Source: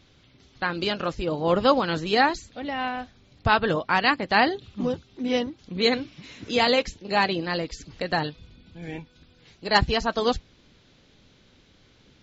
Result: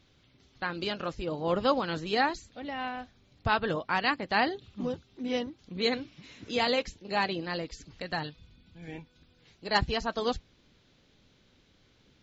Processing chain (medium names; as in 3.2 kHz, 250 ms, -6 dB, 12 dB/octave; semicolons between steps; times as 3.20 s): 7.93–8.88 s: peaking EQ 450 Hz -4 dB 1.8 oct; trim -6.5 dB